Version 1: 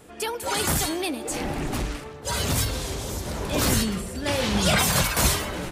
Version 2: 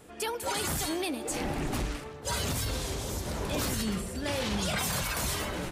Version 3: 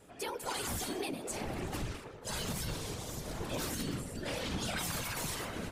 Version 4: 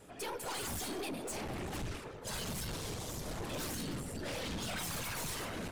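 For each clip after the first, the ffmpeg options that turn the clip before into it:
-af "alimiter=limit=-18dB:level=0:latency=1:release=62,volume=-3.5dB"
-af "afftfilt=real='hypot(re,im)*cos(2*PI*random(0))':imag='hypot(re,im)*sin(2*PI*random(1))':win_size=512:overlap=0.75"
-af "aeval=exprs='(tanh(89.1*val(0)+0.3)-tanh(0.3))/89.1':c=same,volume=3dB"

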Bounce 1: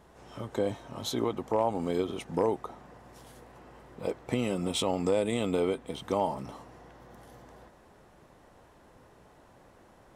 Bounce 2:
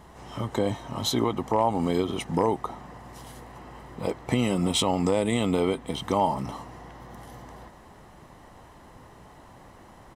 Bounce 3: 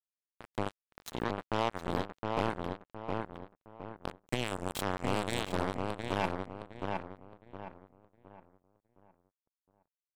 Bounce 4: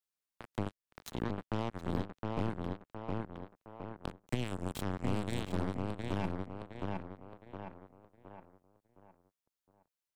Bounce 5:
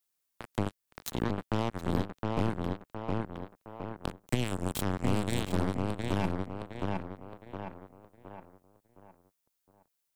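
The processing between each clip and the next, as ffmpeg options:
-filter_complex "[0:a]aecho=1:1:1:0.33,asplit=2[a][b];[b]alimiter=limit=-22.5dB:level=0:latency=1:release=205,volume=-0.5dB[c];[a][c]amix=inputs=2:normalize=0,volume=1.5dB"
-filter_complex "[0:a]acrusher=bits=2:mix=0:aa=0.5,asplit=2[a][b];[b]adelay=714,lowpass=f=2.1k:p=1,volume=-3dB,asplit=2[c][d];[d]adelay=714,lowpass=f=2.1k:p=1,volume=0.36,asplit=2[e][f];[f]adelay=714,lowpass=f=2.1k:p=1,volume=0.36,asplit=2[g][h];[h]adelay=714,lowpass=f=2.1k:p=1,volume=0.36,asplit=2[i][j];[j]adelay=714,lowpass=f=2.1k:p=1,volume=0.36[k];[a][c][e][g][i][k]amix=inputs=6:normalize=0,volume=-8dB"
-filter_complex "[0:a]acrossover=split=310[a][b];[b]acompressor=threshold=-49dB:ratio=2[c];[a][c]amix=inputs=2:normalize=0,volume=2.5dB"
-af "highshelf=f=7.2k:g=8,volume=5dB"

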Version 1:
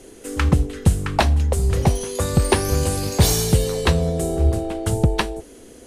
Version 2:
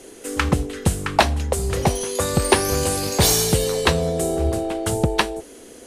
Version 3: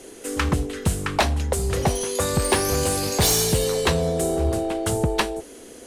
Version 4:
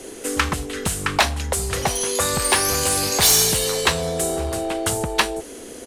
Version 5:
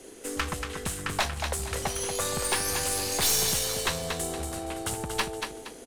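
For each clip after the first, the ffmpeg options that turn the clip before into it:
-af "lowshelf=f=190:g=-11,volume=3.5dB"
-af "asoftclip=type=tanh:threshold=-12dB"
-filter_complex "[0:a]acrossover=split=840|4600[a][b][c];[a]acompressor=threshold=-30dB:ratio=6[d];[c]asplit=2[e][f];[f]adelay=42,volume=-11dB[g];[e][g]amix=inputs=2:normalize=0[h];[d][b][h]amix=inputs=3:normalize=0,volume=5.5dB"
-filter_complex "[0:a]aecho=1:1:234|468|702|936:0.473|0.161|0.0547|0.0186,asplit=2[a][b];[b]aeval=exprs='sgn(val(0))*max(abs(val(0))-0.02,0)':c=same,volume=-11dB[c];[a][c]amix=inputs=2:normalize=0,aeval=exprs='(tanh(2.51*val(0)+0.55)-tanh(0.55))/2.51':c=same,volume=-8.5dB"

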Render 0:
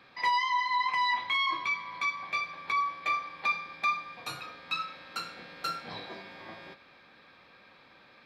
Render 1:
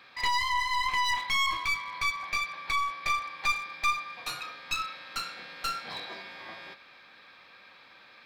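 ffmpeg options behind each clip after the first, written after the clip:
-af "tiltshelf=f=690:g=-5.5,aeval=exprs='clip(val(0),-1,0.0237)':c=same"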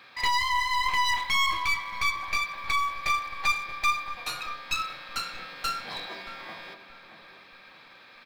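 -filter_complex "[0:a]asplit=2[a][b];[b]acrusher=bits=3:mode=log:mix=0:aa=0.000001,volume=-10.5dB[c];[a][c]amix=inputs=2:normalize=0,asplit=2[d][e];[e]adelay=627,lowpass=f=930:p=1,volume=-9dB,asplit=2[f][g];[g]adelay=627,lowpass=f=930:p=1,volume=0.43,asplit=2[h][i];[i]adelay=627,lowpass=f=930:p=1,volume=0.43,asplit=2[j][k];[k]adelay=627,lowpass=f=930:p=1,volume=0.43,asplit=2[l][m];[m]adelay=627,lowpass=f=930:p=1,volume=0.43[n];[d][f][h][j][l][n]amix=inputs=6:normalize=0"

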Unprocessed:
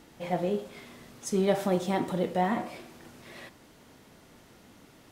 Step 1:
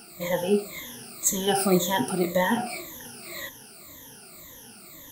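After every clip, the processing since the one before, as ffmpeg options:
-af "afftfilt=real='re*pow(10,22/40*sin(2*PI*(1.1*log(max(b,1)*sr/1024/100)/log(2)-(-1.9)*(pts-256)/sr)))':imag='im*pow(10,22/40*sin(2*PI*(1.1*log(max(b,1)*sr/1024/100)/log(2)-(-1.9)*(pts-256)/sr)))':win_size=1024:overlap=0.75,aemphasis=mode=production:type=75fm"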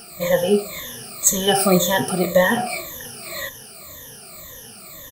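-af "aecho=1:1:1.7:0.54,volume=6dB"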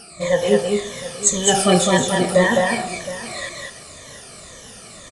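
-af "aecho=1:1:207|332|717:0.668|0.112|0.178,aresample=22050,aresample=44100"

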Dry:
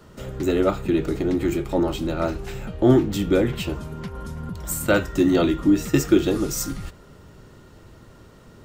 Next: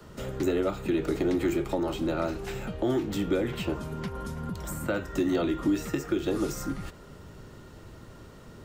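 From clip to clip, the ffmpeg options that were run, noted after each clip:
-filter_complex "[0:a]acrossover=split=160|330|2100[a][b][c][d];[a]acompressor=threshold=-38dB:ratio=4[e];[b]acompressor=threshold=-33dB:ratio=4[f];[c]acompressor=threshold=-25dB:ratio=4[g];[d]acompressor=threshold=-42dB:ratio=4[h];[e][f][g][h]amix=inputs=4:normalize=0,alimiter=limit=-17dB:level=0:latency=1:release=270"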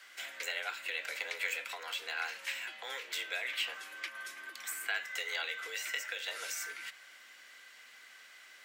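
-af "afreqshift=150,highpass=f=2.1k:t=q:w=2.4"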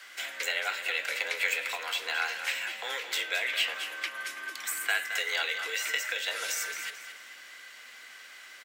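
-af "aecho=1:1:219|438|657|876:0.316|0.108|0.0366|0.0124,volume=6.5dB"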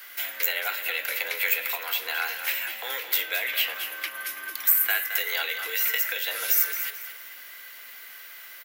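-af "aexciter=amount=10.1:drive=4.4:freq=11k,volume=1.5dB"

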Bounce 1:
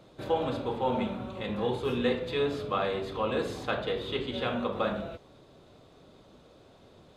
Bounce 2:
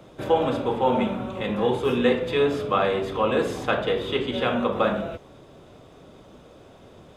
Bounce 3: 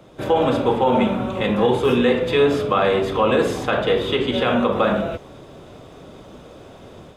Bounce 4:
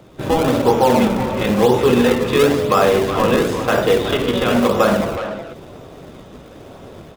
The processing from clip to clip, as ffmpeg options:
-filter_complex "[0:a]equalizer=f=4.2k:t=o:w=0.28:g=-10,acrossover=split=140|2000[a][b][c];[a]alimiter=level_in=20dB:limit=-24dB:level=0:latency=1:release=175,volume=-20dB[d];[d][b][c]amix=inputs=3:normalize=0,volume=7.5dB"
-af "dynaudnorm=f=120:g=3:m=6.5dB,alimiter=level_in=7dB:limit=-1dB:release=50:level=0:latency=1,volume=-6.5dB"
-filter_complex "[0:a]asplit=2[a][b];[b]acrusher=samples=34:mix=1:aa=0.000001:lfo=1:lforange=54.4:lforate=0.99,volume=-4.5dB[c];[a][c]amix=inputs=2:normalize=0,asplit=2[d][e];[e]adelay=370,highpass=300,lowpass=3.4k,asoftclip=type=hard:threshold=-13dB,volume=-7dB[f];[d][f]amix=inputs=2:normalize=0"

